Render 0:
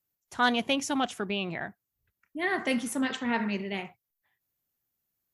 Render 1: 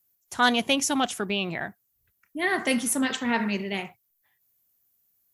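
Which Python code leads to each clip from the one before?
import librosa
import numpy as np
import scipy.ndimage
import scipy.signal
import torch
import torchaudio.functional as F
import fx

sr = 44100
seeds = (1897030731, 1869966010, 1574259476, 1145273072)

y = fx.high_shelf(x, sr, hz=6500.0, db=11.5)
y = F.gain(torch.from_numpy(y), 3.0).numpy()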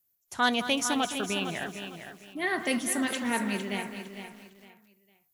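y = fx.echo_feedback(x, sr, ms=456, feedback_pct=28, wet_db=-9.5)
y = fx.echo_crushed(y, sr, ms=210, feedback_pct=55, bits=7, wet_db=-12.0)
y = F.gain(torch.from_numpy(y), -4.0).numpy()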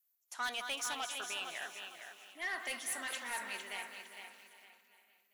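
y = scipy.signal.sosfilt(scipy.signal.butter(2, 840.0, 'highpass', fs=sr, output='sos'), x)
y = fx.echo_feedback(y, sr, ms=399, feedback_pct=53, wet_db=-18.0)
y = 10.0 ** (-26.5 / 20.0) * np.tanh(y / 10.0 ** (-26.5 / 20.0))
y = F.gain(torch.from_numpy(y), -5.0).numpy()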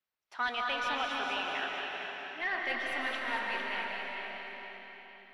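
y = fx.air_absorb(x, sr, metres=270.0)
y = fx.notch(y, sr, hz=6600.0, q=7.6)
y = fx.rev_freeverb(y, sr, rt60_s=4.0, hf_ratio=0.85, predelay_ms=105, drr_db=-0.5)
y = F.gain(torch.from_numpy(y), 7.0).numpy()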